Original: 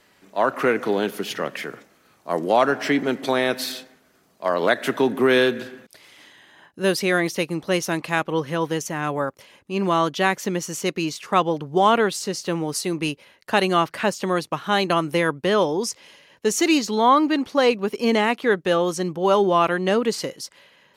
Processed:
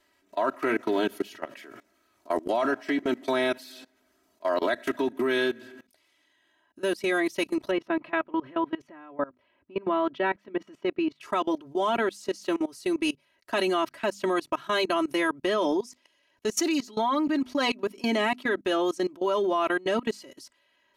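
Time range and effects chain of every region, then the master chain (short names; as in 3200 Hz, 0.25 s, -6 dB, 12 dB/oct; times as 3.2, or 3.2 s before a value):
7.71–11.21 HPF 74 Hz 6 dB/oct + air absorption 460 m
whole clip: notches 50/100/150/200/250 Hz; comb 3.1 ms, depth 93%; level quantiser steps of 22 dB; gain -2.5 dB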